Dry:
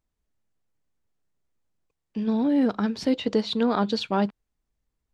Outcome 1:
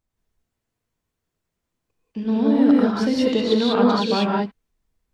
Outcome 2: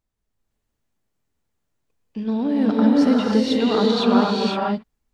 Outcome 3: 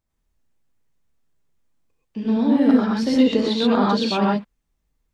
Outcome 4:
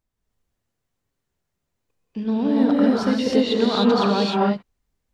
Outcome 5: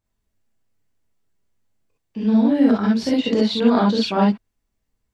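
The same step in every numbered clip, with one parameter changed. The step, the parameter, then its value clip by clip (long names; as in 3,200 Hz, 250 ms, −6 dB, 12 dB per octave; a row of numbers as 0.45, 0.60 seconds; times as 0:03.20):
reverb whose tail is shaped and stops, gate: 220, 540, 150, 330, 80 milliseconds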